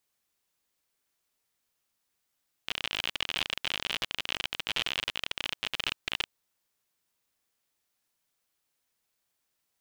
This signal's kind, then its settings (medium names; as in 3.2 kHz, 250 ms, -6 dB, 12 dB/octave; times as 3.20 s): random clicks 54 per s -14 dBFS 3.59 s